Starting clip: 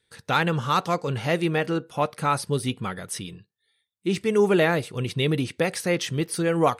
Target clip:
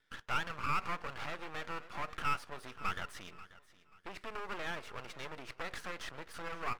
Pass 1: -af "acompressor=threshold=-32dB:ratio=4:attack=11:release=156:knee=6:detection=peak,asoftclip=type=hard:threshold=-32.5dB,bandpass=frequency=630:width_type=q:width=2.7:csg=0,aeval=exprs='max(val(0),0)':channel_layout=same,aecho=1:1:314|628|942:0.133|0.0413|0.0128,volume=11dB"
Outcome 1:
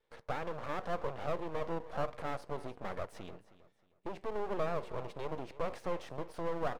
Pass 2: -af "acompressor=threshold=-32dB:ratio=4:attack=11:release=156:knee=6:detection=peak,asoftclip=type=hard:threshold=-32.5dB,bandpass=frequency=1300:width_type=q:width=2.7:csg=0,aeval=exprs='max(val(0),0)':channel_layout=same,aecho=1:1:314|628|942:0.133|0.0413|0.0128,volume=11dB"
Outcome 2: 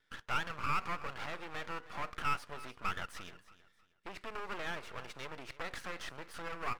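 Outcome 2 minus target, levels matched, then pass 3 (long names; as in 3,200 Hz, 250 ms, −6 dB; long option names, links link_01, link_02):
echo 222 ms early
-af "acompressor=threshold=-32dB:ratio=4:attack=11:release=156:knee=6:detection=peak,asoftclip=type=hard:threshold=-32.5dB,bandpass=frequency=1300:width_type=q:width=2.7:csg=0,aeval=exprs='max(val(0),0)':channel_layout=same,aecho=1:1:536|1072|1608:0.133|0.0413|0.0128,volume=11dB"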